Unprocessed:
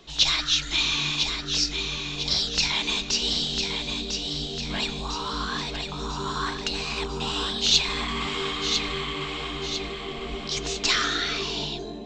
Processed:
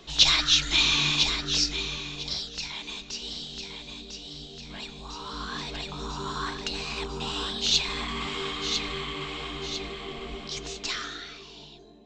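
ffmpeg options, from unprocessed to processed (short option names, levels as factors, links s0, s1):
-af "volume=2.99,afade=t=out:st=1.18:d=1.35:silence=0.223872,afade=t=in:st=4.93:d=0.86:silence=0.421697,afade=t=out:st=10.14:d=1.26:silence=0.223872"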